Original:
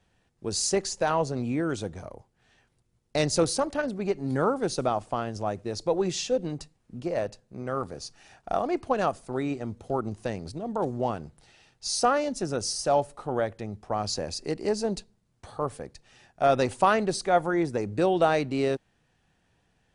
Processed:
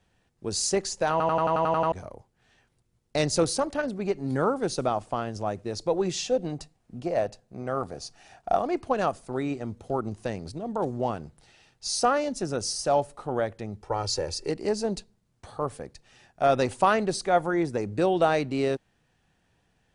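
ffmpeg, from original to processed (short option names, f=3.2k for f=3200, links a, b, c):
-filter_complex "[0:a]asettb=1/sr,asplit=3[a][b][c];[a]atrim=end=6.234[d];[b]atrim=start=6.23:end=8.56,asetpts=PTS-STARTPTS,afade=t=in:d=0.004:c=qsin,afade=t=out:st=2.326:d=0.004:c=qsin,equalizer=f=710:w=4.4:g=7.5[e];[c]atrim=start=8.556[f];[d][e]acrossfade=d=0.004:c1=hsin:c2=qsin[g];[g][f]acrossfade=d=0.004:c1=qsin:c2=hsin,asettb=1/sr,asplit=3[h][i][j];[h]atrim=end=13.814[k];[i]atrim=start=13.81:end=14.5,asetpts=PTS-STARTPTS,afade=t=in:d=0.004:c=qsin,afade=t=out:st=0.686:d=0.004:c=qsin,aecho=1:1:2.2:0.74,atrim=end_sample=30429[l];[j]atrim=start=14.496[m];[k][l]acrossfade=d=0.004:c1=hsin:c2=qsin[n];[n][m]acrossfade=d=0.004:c1=qsin:c2=hsin,asplit=10[o][p][q][r][s][t][u][v][w][x];[o]atrim=end=1.202[y];[p]atrim=start=1.108:end=1.202[z];[q]atrim=start=1.108:end=1.202[aa];[r]atrim=start=1.108:end=1.202[ab];[s]atrim=start=1.108:end=1.202[ac];[t]atrim=start=1.108:end=1.202[ad];[u]atrim=start=1.108:end=1.202[ae];[v]atrim=start=1.108:end=1.202[af];[w]atrim=start=1.108:end=1.202[ag];[x]atrim=start=1.918[ah];[y][z]acrossfade=d=0.004:c1=hsin:c2=hsin[ai];[ai][aa]acrossfade=d=0.004:c1=hsin:c2=hsin[aj];[aj][ab]acrossfade=d=0.004:c1=hsin:c2=hsin[ak];[ak][ac]acrossfade=d=0.004:c1=hsin:c2=hsin[al];[al][ad]acrossfade=d=0.004:c1=hsin:c2=hsin[am];[am][ae]acrossfade=d=0.004:c1=hsin:c2=hsin[an];[an][af]acrossfade=d=0.004:c1=hsin:c2=hsin[ao];[ao][ag]acrossfade=d=0.004:c1=hsin:c2=hsin[ap];[ap][ah]acrossfade=d=0.004:c1=hsin:c2=hsin"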